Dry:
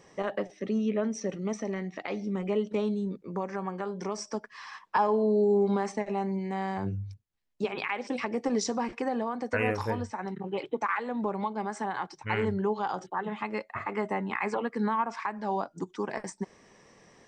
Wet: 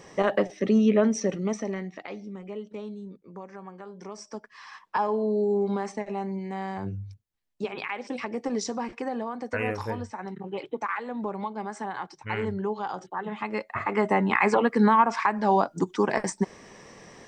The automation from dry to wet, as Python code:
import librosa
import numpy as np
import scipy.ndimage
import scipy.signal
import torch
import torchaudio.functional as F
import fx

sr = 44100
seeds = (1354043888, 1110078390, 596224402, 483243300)

y = fx.gain(x, sr, db=fx.line((1.05, 8.0), (1.78, 1.0), (2.4, -8.5), (3.85, -8.5), (4.74, -1.0), (13.11, -1.0), (14.25, 9.0)))